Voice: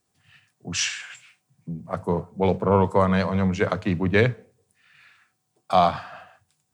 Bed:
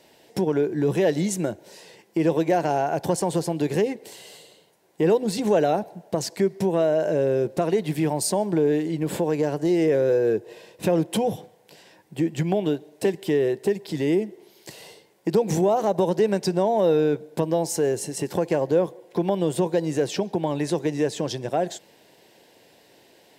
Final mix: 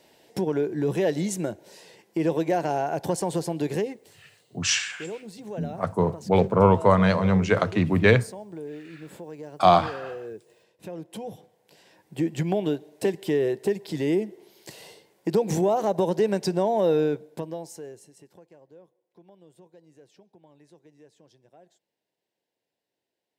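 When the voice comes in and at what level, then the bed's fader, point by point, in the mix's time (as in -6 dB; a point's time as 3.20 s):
3.90 s, +1.5 dB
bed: 3.74 s -3 dB
4.24 s -16.5 dB
10.94 s -16.5 dB
12.14 s -2 dB
17.03 s -2 dB
18.52 s -30.5 dB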